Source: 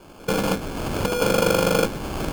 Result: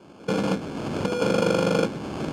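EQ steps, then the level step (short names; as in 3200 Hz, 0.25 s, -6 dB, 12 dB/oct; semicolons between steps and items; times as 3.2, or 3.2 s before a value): BPF 180–6900 Hz; low shelf 280 Hz +11.5 dB; -5.0 dB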